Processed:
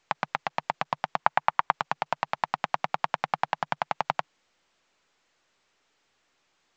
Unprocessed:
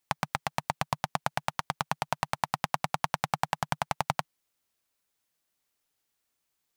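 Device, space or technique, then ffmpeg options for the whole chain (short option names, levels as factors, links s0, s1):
telephone: -filter_complex "[0:a]asettb=1/sr,asplit=3[s0][s1][s2];[s0]atrim=end=1.204[s3];[s1]atrim=start=1.2:end=1.73,asetpts=PTS-STARTPTS,afade=t=in:d=0.004:c=qsin,afade=t=out:st=0.526:d=0.004:c=qsin,equalizer=f=1000:t=o:w=1:g=8,equalizer=f=2000:t=o:w=1:g=4,equalizer=f=8000:t=o:w=1:g=-10[s4];[s2]atrim=start=1.726[s5];[s3][s4]acrossfade=d=0.004:c1=hsin:c2=qsin[s6];[s6][s5]acrossfade=d=0.004:c1=qsin:c2=hsin,highpass=260,lowpass=3100,volume=1.33" -ar 16000 -c:a pcm_alaw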